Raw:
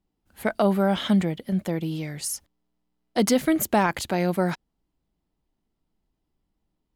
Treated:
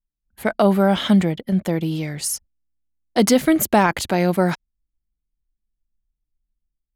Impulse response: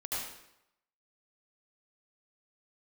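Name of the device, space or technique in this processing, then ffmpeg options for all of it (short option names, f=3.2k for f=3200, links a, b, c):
voice memo with heavy noise removal: -af "anlmdn=0.01,dynaudnorm=f=120:g=7:m=5.5dB"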